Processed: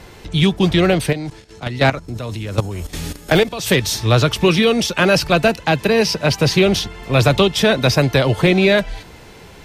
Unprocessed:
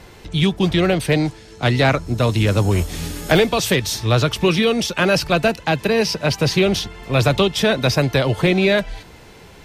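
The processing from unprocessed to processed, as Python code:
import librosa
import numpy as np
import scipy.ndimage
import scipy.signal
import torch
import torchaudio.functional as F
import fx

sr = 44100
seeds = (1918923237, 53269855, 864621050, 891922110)

y = fx.level_steps(x, sr, step_db=14, at=(1.1, 3.66), fade=0.02)
y = y * librosa.db_to_amplitude(2.5)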